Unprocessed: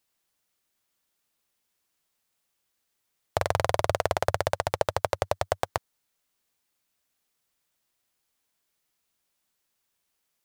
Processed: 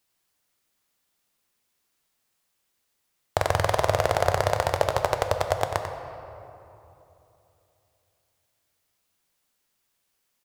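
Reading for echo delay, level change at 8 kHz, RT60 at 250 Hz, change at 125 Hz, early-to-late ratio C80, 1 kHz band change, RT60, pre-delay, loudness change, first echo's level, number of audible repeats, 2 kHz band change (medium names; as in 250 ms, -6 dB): 93 ms, +3.0 dB, 3.4 s, +4.5 dB, 5.5 dB, +3.5 dB, 3.0 s, 9 ms, +3.5 dB, -9.0 dB, 1, +3.5 dB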